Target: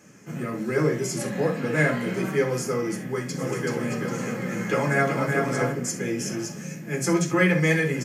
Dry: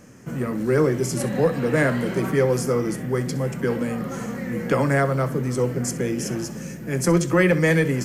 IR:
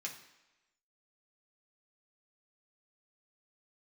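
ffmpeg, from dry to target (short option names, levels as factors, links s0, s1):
-filter_complex "[0:a]asplit=3[s0][s1][s2];[s0]afade=t=out:st=3.37:d=0.02[s3];[s1]aecho=1:1:380|627|787.6|891.9|959.7:0.631|0.398|0.251|0.158|0.1,afade=t=in:st=3.37:d=0.02,afade=t=out:st=5.71:d=0.02[s4];[s2]afade=t=in:st=5.71:d=0.02[s5];[s3][s4][s5]amix=inputs=3:normalize=0[s6];[1:a]atrim=start_sample=2205,atrim=end_sample=3969[s7];[s6][s7]afir=irnorm=-1:irlink=0"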